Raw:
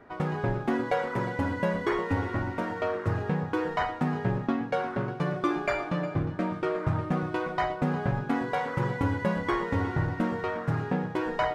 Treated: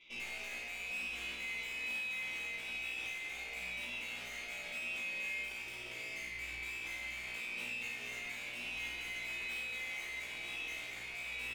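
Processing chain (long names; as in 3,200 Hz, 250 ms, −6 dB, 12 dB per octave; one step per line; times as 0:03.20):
neighbouring bands swapped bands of 2,000 Hz
comb filter 3.9 ms, depth 39%
tube saturation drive 37 dB, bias 0.7
bass and treble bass −11 dB, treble −2 dB
single-tap delay 165 ms −9.5 dB
spring reverb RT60 2 s, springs 49 ms, chirp 55 ms, DRR −3.5 dB
brickwall limiter −32 dBFS, peak gain reduction 9.5 dB
low-shelf EQ 370 Hz +8 dB
tuned comb filter 59 Hz, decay 0.37 s, harmonics all, mix 100%
level +5.5 dB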